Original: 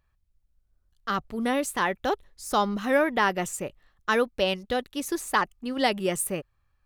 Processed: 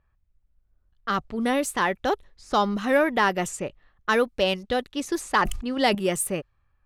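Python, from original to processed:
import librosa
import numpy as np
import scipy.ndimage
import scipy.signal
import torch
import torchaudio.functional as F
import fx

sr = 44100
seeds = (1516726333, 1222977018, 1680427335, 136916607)

p1 = fx.env_lowpass(x, sr, base_hz=2200.0, full_db=-23.0)
p2 = 10.0 ** (-20.0 / 20.0) * np.tanh(p1 / 10.0 ** (-20.0 / 20.0))
p3 = p1 + F.gain(torch.from_numpy(p2), -9.0).numpy()
y = fx.sustainer(p3, sr, db_per_s=60.0, at=(5.22, 5.95))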